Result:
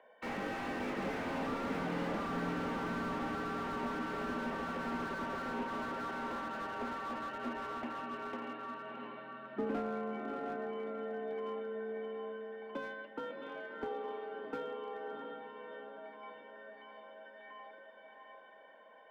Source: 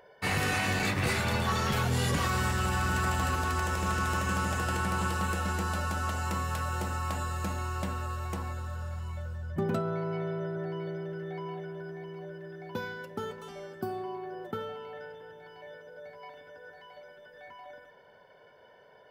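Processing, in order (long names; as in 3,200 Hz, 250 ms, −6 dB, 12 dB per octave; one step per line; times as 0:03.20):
treble cut that deepens with the level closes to 2,700 Hz
single-sideband voice off tune +51 Hz 160–3,400 Hz
on a send: feedback delay with all-pass diffusion 690 ms, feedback 41%, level −3 dB
on the sum: slew-rate limiting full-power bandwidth 25 Hz
level −5 dB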